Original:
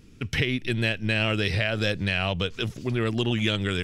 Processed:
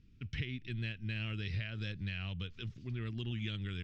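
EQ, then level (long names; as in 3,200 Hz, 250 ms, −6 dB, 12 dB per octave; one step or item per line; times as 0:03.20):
high-frequency loss of the air 180 metres
guitar amp tone stack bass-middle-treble 6-0-2
+4.0 dB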